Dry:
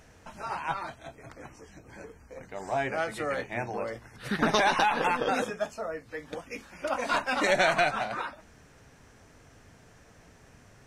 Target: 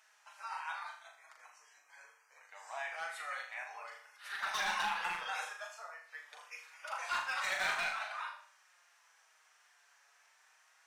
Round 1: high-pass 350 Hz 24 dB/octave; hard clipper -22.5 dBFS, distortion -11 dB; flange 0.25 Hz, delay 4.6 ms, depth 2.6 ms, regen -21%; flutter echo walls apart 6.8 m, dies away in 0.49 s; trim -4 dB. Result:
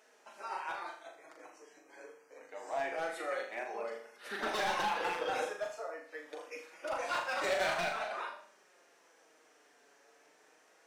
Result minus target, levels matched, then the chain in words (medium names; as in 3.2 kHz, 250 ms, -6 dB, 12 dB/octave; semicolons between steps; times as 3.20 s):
250 Hz band +12.0 dB
high-pass 920 Hz 24 dB/octave; hard clipper -22.5 dBFS, distortion -14 dB; flange 0.25 Hz, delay 4.6 ms, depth 2.6 ms, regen -21%; flutter echo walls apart 6.8 m, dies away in 0.49 s; trim -4 dB